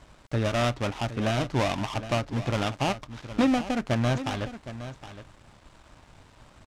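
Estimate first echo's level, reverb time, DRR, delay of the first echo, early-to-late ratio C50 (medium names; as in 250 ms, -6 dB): -13.0 dB, no reverb, no reverb, 765 ms, no reverb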